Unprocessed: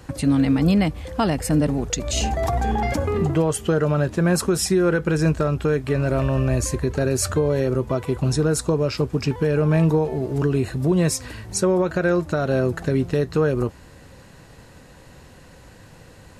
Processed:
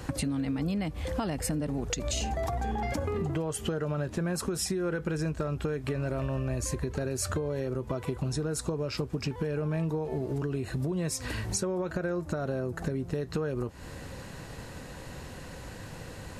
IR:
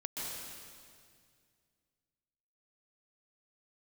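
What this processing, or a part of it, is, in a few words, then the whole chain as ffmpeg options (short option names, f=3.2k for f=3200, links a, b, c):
serial compression, peaks first: -filter_complex "[0:a]acompressor=threshold=-28dB:ratio=6,acompressor=threshold=-34dB:ratio=2,asettb=1/sr,asplit=3[a][b][c];[a]atrim=end=11.934[d];[b]atrim=start=11.93:end=13.18,asetpts=PTS-STARTPTS,afade=t=in:d=0.004:c=qsin,afade=t=out:st=1.246:d=0.004:c=qsin,equalizer=f=3.1k:w=0.78:g=-5[e];[c]atrim=start=13.176[f];[d][e]acrossfade=d=0.004:c1=hsin:c2=qsin[g];[g][f]acrossfade=d=0.004:c1=qsin:c2=hsin,volume=3.5dB"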